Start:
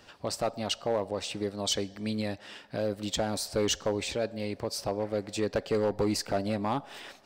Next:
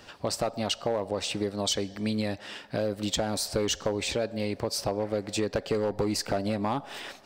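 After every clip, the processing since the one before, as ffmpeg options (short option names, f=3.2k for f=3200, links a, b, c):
-af "acompressor=threshold=-29dB:ratio=6,volume=5dB"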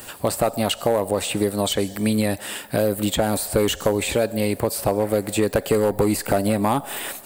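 -filter_complex "[0:a]aexciter=amount=12.4:drive=5.9:freq=8k,acrossover=split=3400[a][b];[b]acompressor=threshold=-37dB:ratio=4:attack=1:release=60[c];[a][c]amix=inputs=2:normalize=0,volume=8.5dB"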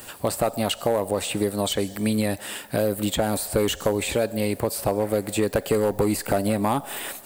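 -af "acrusher=bits=8:mix=0:aa=0.000001,volume=-2.5dB"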